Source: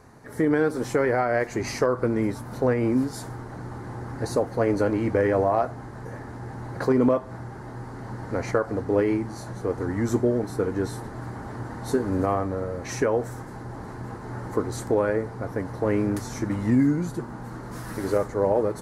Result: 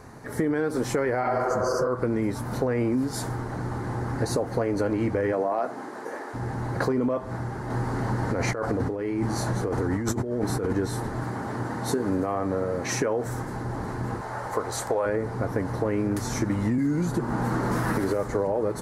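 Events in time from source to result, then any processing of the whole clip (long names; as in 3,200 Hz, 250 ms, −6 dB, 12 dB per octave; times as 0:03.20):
0:01.26–0:01.85: healed spectral selection 260–4,400 Hz
0:05.32–0:06.33: high-pass filter 160 Hz → 360 Hz 24 dB per octave
0:07.70–0:10.73: compressor whose output falls as the input rises −30 dBFS
0:11.23–0:13.26: high-pass filter 120 Hz
0:14.21–0:15.06: low shelf with overshoot 430 Hz −10 dB, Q 1.5
0:16.78–0:18.48: multiband upward and downward compressor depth 70%
whole clip: brickwall limiter −16.5 dBFS; downward compressor, threshold −27 dBFS; level +5.5 dB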